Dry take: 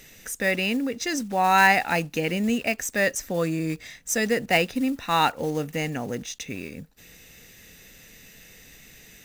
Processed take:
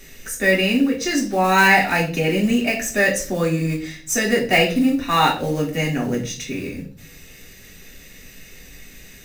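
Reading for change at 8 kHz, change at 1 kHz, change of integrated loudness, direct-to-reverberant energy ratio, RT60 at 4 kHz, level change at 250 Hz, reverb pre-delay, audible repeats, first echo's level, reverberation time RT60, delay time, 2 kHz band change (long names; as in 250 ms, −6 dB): +4.5 dB, +3.0 dB, +5.5 dB, −4.0 dB, 0.40 s, +7.0 dB, 3 ms, no echo audible, no echo audible, 0.45 s, no echo audible, +5.5 dB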